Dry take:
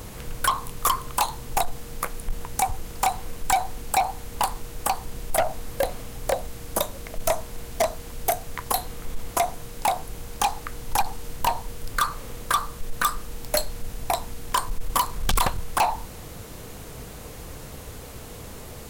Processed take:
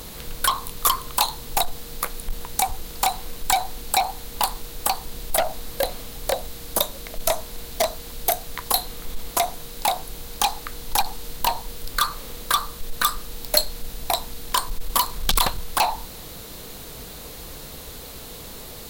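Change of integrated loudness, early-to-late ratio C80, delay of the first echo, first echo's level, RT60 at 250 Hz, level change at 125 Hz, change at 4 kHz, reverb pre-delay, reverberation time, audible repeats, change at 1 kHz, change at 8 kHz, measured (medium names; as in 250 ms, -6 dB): +2.5 dB, no reverb, no echo, no echo, no reverb, -3.0 dB, +7.0 dB, no reverb, no reverb, no echo, 0.0 dB, +3.5 dB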